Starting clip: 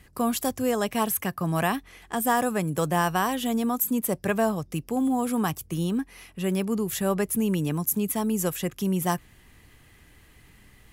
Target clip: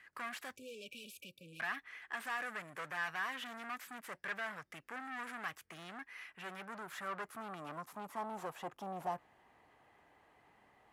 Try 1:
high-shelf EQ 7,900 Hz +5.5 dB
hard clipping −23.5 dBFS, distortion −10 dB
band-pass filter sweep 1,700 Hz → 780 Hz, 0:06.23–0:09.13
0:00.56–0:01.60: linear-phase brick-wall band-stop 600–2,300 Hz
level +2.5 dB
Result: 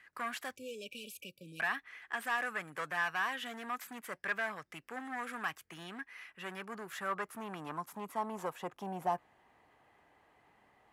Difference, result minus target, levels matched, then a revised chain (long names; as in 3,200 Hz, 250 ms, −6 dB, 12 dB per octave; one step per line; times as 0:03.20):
hard clipping: distortion −5 dB
high-shelf EQ 7,900 Hz +5.5 dB
hard clipping −30.5 dBFS, distortion −5 dB
band-pass filter sweep 1,700 Hz → 780 Hz, 0:06.23–0:09.13
0:00.56–0:01.60: linear-phase brick-wall band-stop 600–2,300 Hz
level +2.5 dB